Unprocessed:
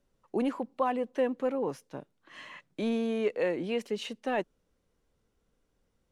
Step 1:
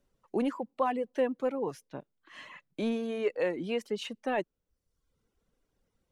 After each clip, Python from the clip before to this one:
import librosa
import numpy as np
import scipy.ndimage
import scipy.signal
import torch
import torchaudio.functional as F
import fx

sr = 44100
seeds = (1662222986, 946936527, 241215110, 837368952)

y = fx.dereverb_blind(x, sr, rt60_s=0.79)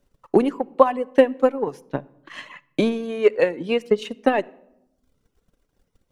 y = fx.transient(x, sr, attack_db=11, sustain_db=-5)
y = fx.room_shoebox(y, sr, seeds[0], volume_m3=2800.0, walls='furnished', distance_m=0.34)
y = F.gain(torch.from_numpy(y), 6.0).numpy()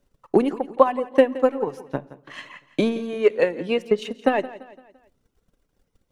y = fx.echo_feedback(x, sr, ms=170, feedback_pct=45, wet_db=-17.0)
y = F.gain(torch.from_numpy(y), -1.0).numpy()